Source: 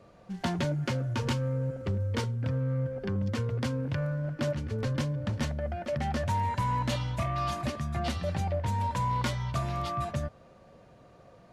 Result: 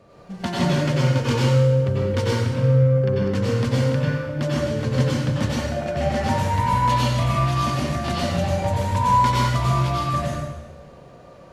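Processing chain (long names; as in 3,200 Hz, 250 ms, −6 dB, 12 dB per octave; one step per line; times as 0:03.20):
dense smooth reverb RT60 1.1 s, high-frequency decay 0.95×, pre-delay 80 ms, DRR −6 dB
level +3 dB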